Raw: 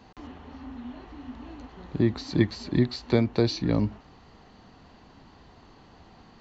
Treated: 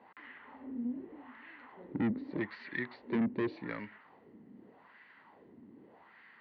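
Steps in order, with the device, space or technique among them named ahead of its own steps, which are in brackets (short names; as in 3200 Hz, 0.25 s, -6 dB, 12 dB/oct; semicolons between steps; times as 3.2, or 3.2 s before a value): wah-wah guitar rig (wah 0.84 Hz 240–1800 Hz, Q 2.3; tube stage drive 33 dB, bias 0.3; speaker cabinet 94–3800 Hz, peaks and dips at 210 Hz +3 dB, 730 Hz -8 dB, 1200 Hz -5 dB, 2000 Hz +9 dB); gain +4.5 dB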